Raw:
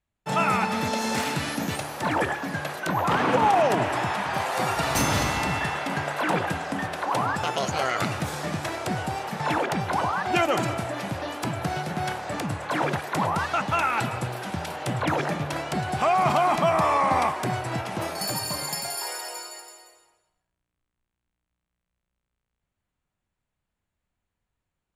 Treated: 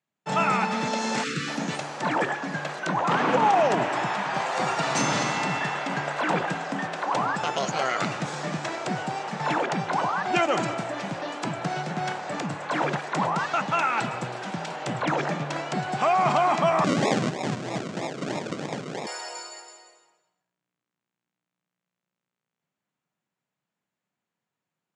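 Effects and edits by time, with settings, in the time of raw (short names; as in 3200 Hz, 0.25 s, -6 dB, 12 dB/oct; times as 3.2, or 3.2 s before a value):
1.24–1.48 spectral delete 530–1100 Hz
16.84–19.07 decimation with a swept rate 41×, swing 60% 3.1 Hz
whole clip: elliptic band-pass 150–7400 Hz, stop band 40 dB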